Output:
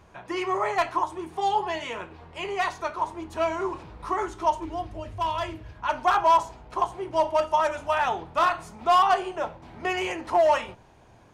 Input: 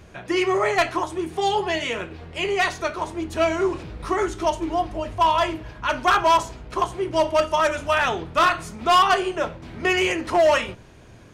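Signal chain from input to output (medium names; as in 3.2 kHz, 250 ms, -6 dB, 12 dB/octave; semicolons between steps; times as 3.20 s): peaking EQ 950 Hz +11.5 dB 0.76 oct, from 4.65 s 81 Hz, from 5.78 s 840 Hz; trim -9 dB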